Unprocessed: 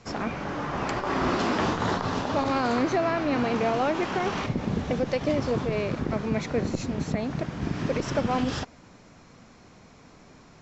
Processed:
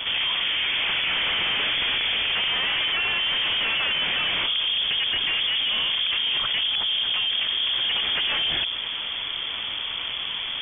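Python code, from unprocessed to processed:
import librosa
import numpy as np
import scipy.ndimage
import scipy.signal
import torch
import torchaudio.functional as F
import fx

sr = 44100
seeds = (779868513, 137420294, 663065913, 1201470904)

y = fx.cvsd(x, sr, bps=32000)
y = fx.low_shelf(y, sr, hz=190.0, db=5.5)
y = fx.hum_notches(y, sr, base_hz=60, count=5)
y = fx.fold_sine(y, sr, drive_db=7, ceiling_db=-16.0)
y = fx.freq_invert(y, sr, carrier_hz=3400)
y = fx.env_flatten(y, sr, amount_pct=70)
y = F.gain(torch.from_numpy(y), -6.0).numpy()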